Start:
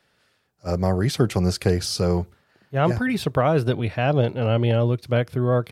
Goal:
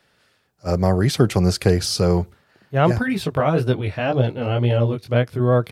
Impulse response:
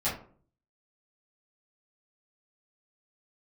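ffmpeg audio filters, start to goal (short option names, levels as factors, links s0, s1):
-filter_complex "[0:a]asplit=3[s0][s1][s2];[s0]afade=t=out:st=3.02:d=0.02[s3];[s1]flanger=delay=15.5:depth=5.6:speed=1.9,afade=t=in:st=3.02:d=0.02,afade=t=out:st=5.39:d=0.02[s4];[s2]afade=t=in:st=5.39:d=0.02[s5];[s3][s4][s5]amix=inputs=3:normalize=0,volume=1.5"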